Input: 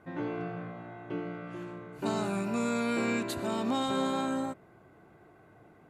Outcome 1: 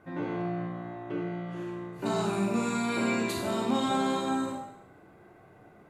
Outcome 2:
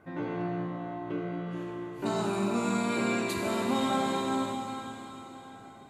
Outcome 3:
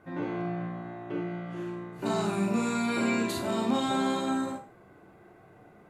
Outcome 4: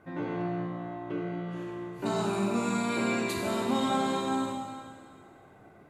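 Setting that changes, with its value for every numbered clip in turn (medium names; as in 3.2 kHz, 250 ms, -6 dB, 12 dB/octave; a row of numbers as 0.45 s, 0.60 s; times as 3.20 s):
Schroeder reverb, RT60: 0.76 s, 4.2 s, 0.32 s, 2 s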